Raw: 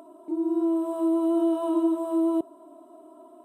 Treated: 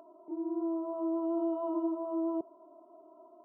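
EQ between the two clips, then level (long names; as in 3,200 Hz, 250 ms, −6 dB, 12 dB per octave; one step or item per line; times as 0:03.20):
Savitzky-Golay smoothing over 65 samples
low-shelf EQ 190 Hz −7 dB
parametric band 270 Hz −9 dB 0.39 octaves
−4.5 dB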